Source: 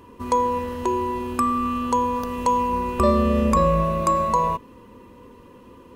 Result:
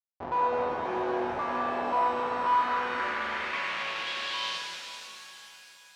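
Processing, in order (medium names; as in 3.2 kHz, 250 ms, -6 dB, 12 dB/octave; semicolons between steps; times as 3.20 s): Schmitt trigger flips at -27.5 dBFS; distance through air 180 m; band-pass sweep 790 Hz -> 5.4 kHz, 1.90–4.95 s; treble shelf 5.9 kHz +7 dB; pitch-shifted reverb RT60 3.4 s, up +7 st, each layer -8 dB, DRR -0.5 dB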